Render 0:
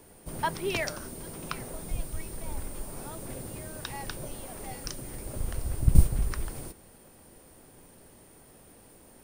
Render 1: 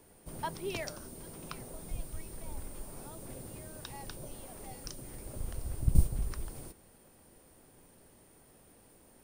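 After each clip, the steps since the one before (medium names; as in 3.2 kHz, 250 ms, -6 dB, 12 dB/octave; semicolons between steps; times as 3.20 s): dynamic bell 1.8 kHz, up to -5 dB, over -51 dBFS, Q 1; trim -6 dB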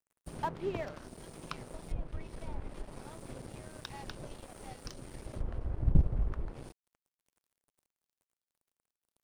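single-diode clipper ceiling -21.5 dBFS; low-pass that closes with the level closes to 1.4 kHz, closed at -34 dBFS; crossover distortion -52 dBFS; trim +4.5 dB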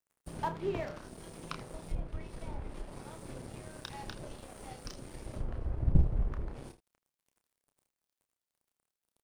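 early reflections 30 ms -7.5 dB, 80 ms -15.5 dB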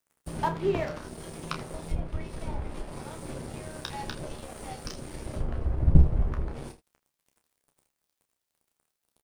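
doubling 13 ms -9 dB; trim +6.5 dB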